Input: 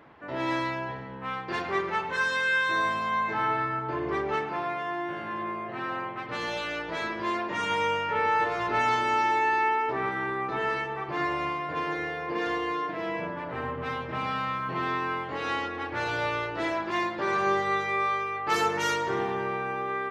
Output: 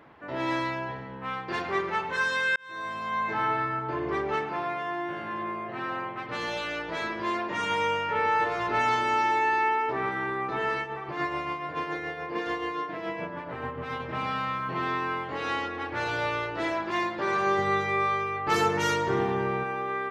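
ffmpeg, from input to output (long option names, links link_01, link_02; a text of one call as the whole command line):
ffmpeg -i in.wav -filter_complex "[0:a]asettb=1/sr,asplit=3[link_01][link_02][link_03];[link_01]atrim=end=10.804[link_04];[link_02]atrim=start=10.8:end=14,asetpts=PTS-STARTPTS,afade=type=in:duration=0.004:curve=qsin,afade=type=out:start_time=3.196:duration=0.004:curve=qsin,tremolo=f=7:d=0.43[link_05];[link_03]atrim=start=13.996[link_06];[link_04][link_05]acrossfade=duration=0.004:curve1=hsin:curve2=qsin[link_07];[link_07][link_06]acrossfade=duration=0.004:curve1=qsin:curve2=hsin,asettb=1/sr,asplit=3[link_08][link_09][link_10];[link_08]atrim=end=17.584[link_11];[link_09]atrim=start=17.58:end=19.64,asetpts=PTS-STARTPTS,afade=type=in:duration=0.004:curve=qsin,afade=type=out:start_time=2.056:duration=0.004:curve=qsin,lowshelf=frequency=280:gain=9[link_12];[link_10]atrim=start=19.636[link_13];[link_11][link_12]acrossfade=duration=0.004:curve1=hsin:curve2=qsin[link_14];[link_14][link_13]acrossfade=duration=0.004:curve1=qsin:curve2=hsin,asplit=2[link_15][link_16];[link_15]atrim=end=2.56,asetpts=PTS-STARTPTS,afade=type=out:start_time=2.556:duration=0.004:curve=hsin[link_17];[link_16]atrim=start=2.56,asetpts=PTS-STARTPTS,afade=type=in:duration=0.75[link_18];[link_17][link_18]concat=n=2:v=0:a=1" out.wav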